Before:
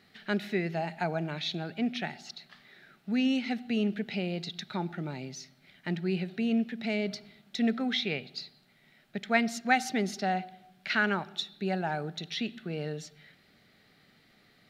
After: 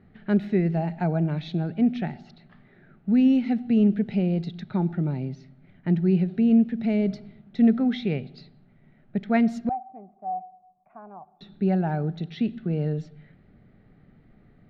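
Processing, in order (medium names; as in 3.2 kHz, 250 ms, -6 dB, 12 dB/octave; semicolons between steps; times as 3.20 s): 9.69–11.41 s: cascade formant filter a; level-controlled noise filter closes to 2.2 kHz, open at -27.5 dBFS; tilt EQ -4.5 dB/octave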